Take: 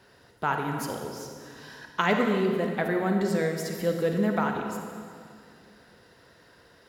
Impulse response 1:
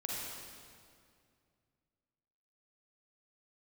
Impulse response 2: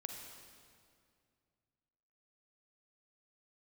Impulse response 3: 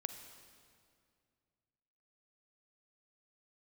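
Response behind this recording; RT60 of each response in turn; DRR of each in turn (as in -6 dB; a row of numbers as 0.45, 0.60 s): 2; 2.3, 2.3, 2.3 s; -4.0, 2.5, 8.0 dB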